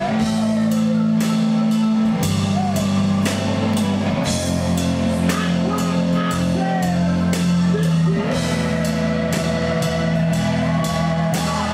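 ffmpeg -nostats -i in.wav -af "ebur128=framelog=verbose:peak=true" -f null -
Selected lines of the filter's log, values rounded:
Integrated loudness:
  I:         -18.9 LUFS
  Threshold: -28.9 LUFS
Loudness range:
  LRA:         1.1 LU
  Threshold: -38.9 LUFS
  LRA low:   -19.4 LUFS
  LRA high:  -18.3 LUFS
True peak:
  Peak:       -5.6 dBFS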